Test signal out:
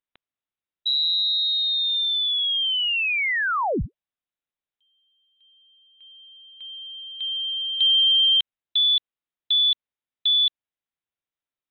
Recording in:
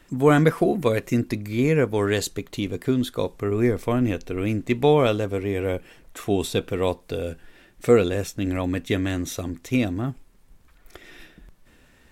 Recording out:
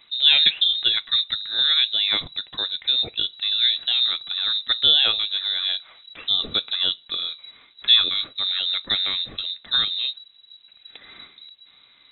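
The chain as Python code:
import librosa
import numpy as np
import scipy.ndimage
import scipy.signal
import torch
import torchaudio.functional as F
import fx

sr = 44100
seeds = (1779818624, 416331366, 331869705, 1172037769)

y = fx.freq_invert(x, sr, carrier_hz=3900)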